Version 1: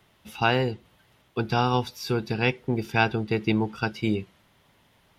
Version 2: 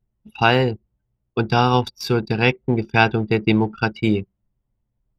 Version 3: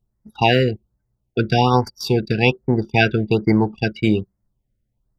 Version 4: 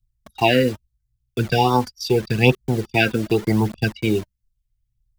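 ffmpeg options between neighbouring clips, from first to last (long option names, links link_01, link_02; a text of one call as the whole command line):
ffmpeg -i in.wav -af "anlmdn=1.58,volume=6.5dB" out.wav
ffmpeg -i in.wav -af "afftfilt=real='re*(1-between(b*sr/1024,900*pow(3200/900,0.5+0.5*sin(2*PI*1.2*pts/sr))/1.41,900*pow(3200/900,0.5+0.5*sin(2*PI*1.2*pts/sr))*1.41))':imag='im*(1-between(b*sr/1024,900*pow(3200/900,0.5+0.5*sin(2*PI*1.2*pts/sr))/1.41,900*pow(3200/900,0.5+0.5*sin(2*PI*1.2*pts/sr))*1.41))':win_size=1024:overlap=0.75,volume=1.5dB" out.wav
ffmpeg -i in.wav -filter_complex "[0:a]acrossover=split=130|2000[link_01][link_02][link_03];[link_02]acrusher=bits=5:mix=0:aa=0.000001[link_04];[link_01][link_04][link_03]amix=inputs=3:normalize=0,aphaser=in_gain=1:out_gain=1:delay=4.1:decay=0.47:speed=0.8:type=triangular,volume=-2dB" out.wav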